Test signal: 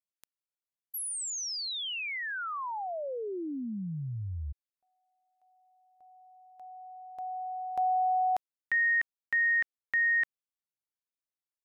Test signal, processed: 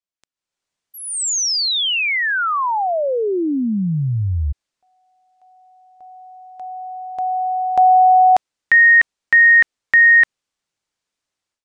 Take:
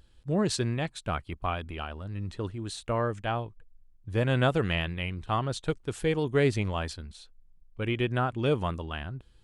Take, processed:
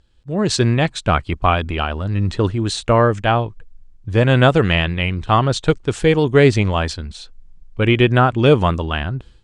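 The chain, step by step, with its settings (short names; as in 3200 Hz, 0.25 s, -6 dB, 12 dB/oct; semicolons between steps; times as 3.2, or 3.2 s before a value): LPF 8200 Hz 24 dB/oct; AGC gain up to 16.5 dB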